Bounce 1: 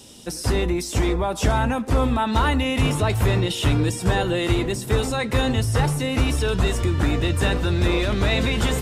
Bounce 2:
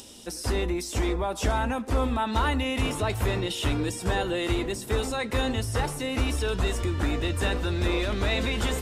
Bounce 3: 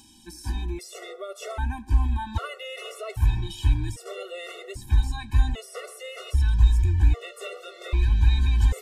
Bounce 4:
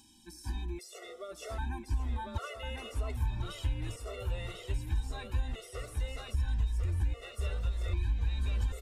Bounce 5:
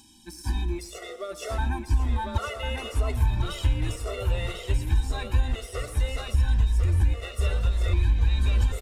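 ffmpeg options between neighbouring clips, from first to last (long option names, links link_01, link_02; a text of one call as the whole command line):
ffmpeg -i in.wav -af "equalizer=frequency=140:width=2.3:gain=-10.5,acompressor=mode=upward:threshold=-37dB:ratio=2.5,volume=-4.5dB" out.wav
ffmpeg -i in.wav -af "asubboost=boost=10.5:cutoff=72,afftfilt=real='re*gt(sin(2*PI*0.63*pts/sr)*(1-2*mod(floor(b*sr/1024/370),2)),0)':imag='im*gt(sin(2*PI*0.63*pts/sr)*(1-2*mod(floor(b*sr/1024/370),2)),0)':win_size=1024:overlap=0.75,volume=-4dB" out.wav
ffmpeg -i in.wav -af "aecho=1:1:1047|2094|3141|4188:0.531|0.143|0.0387|0.0104,acompressor=threshold=-20dB:ratio=4,volume=-7.5dB" out.wav
ffmpeg -i in.wav -filter_complex "[0:a]asplit=2[link_01][link_02];[link_02]aeval=exprs='sgn(val(0))*max(abs(val(0))-0.00266,0)':channel_layout=same,volume=-6dB[link_03];[link_01][link_03]amix=inputs=2:normalize=0,aecho=1:1:117|234|351:0.15|0.0569|0.0216,volume=6dB" out.wav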